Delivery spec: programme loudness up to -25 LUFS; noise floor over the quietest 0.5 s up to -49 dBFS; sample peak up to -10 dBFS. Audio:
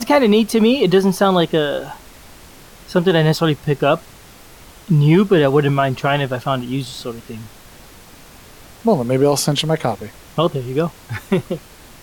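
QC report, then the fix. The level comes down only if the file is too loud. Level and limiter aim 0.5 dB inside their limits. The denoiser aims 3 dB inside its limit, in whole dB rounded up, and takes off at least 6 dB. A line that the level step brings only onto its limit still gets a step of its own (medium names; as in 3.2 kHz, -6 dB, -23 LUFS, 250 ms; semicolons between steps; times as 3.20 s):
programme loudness -17.0 LUFS: fail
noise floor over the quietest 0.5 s -42 dBFS: fail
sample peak -4.0 dBFS: fail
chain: trim -8.5 dB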